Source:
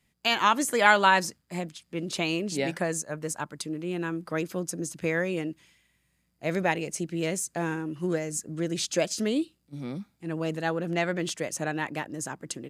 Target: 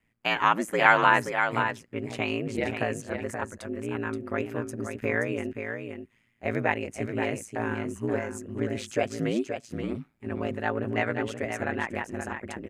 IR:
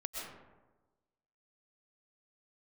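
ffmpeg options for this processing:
-af "highshelf=f=3.1k:t=q:w=1.5:g=-9.5,aecho=1:1:527:0.447,aeval=exprs='val(0)*sin(2*PI*56*n/s)':c=same,volume=2dB"

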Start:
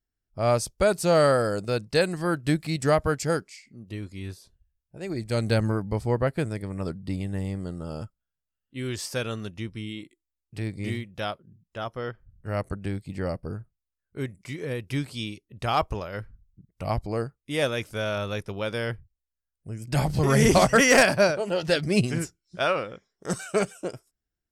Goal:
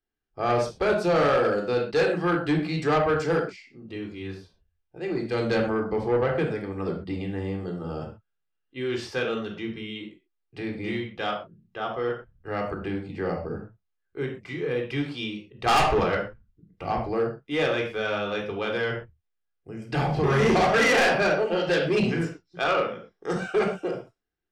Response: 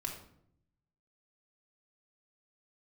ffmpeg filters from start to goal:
-filter_complex "[0:a]acrossover=split=230 4400:gain=0.251 1 0.0708[a][b][c];[a][b][c]amix=inputs=3:normalize=0,asettb=1/sr,asplit=3[d][e][f];[d]atrim=end=15.664[g];[e]atrim=start=15.66:end=16.15,asetpts=PTS-STARTPTS,afade=t=in:d=0.004:c=qsin,afade=t=out:st=0.486:d=0.004:c=qsin,aeval=exprs='0.299*(cos(1*acos(clip(val(0)/0.299,-1,1)))-cos(1*PI/2))+0.15*(cos(5*acos(clip(val(0)/0.299,-1,1)))-cos(5*PI/2))':c=same[h];[f]atrim=start=16.146[i];[g][h]acrossfade=d=0.004:c1=hsin:c2=qsin[j];[j][i]acrossfade=d=0.004:c1=qsin:c2=hsin[k];[1:a]atrim=start_sample=2205,afade=t=out:st=0.21:d=0.01,atrim=end_sample=9702,asetrate=52920,aresample=44100[l];[k][l]afir=irnorm=-1:irlink=0,asoftclip=type=tanh:threshold=-22.5dB,volume=6dB"

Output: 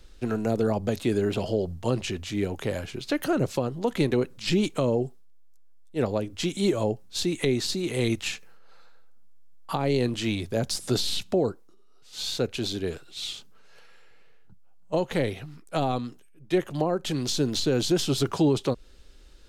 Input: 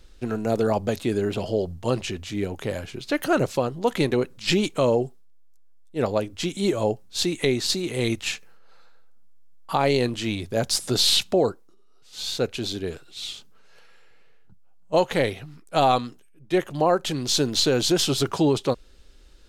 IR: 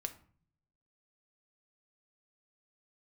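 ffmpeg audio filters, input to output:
-filter_complex "[0:a]acrossover=split=390[a][b];[b]acompressor=threshold=-27dB:ratio=10[c];[a][c]amix=inputs=2:normalize=0"

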